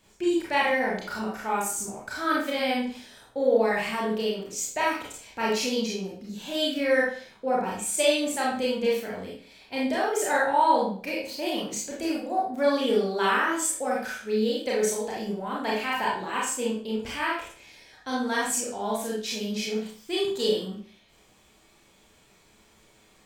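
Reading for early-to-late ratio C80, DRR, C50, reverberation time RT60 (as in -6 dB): 7.5 dB, -5.5 dB, 2.0 dB, 0.45 s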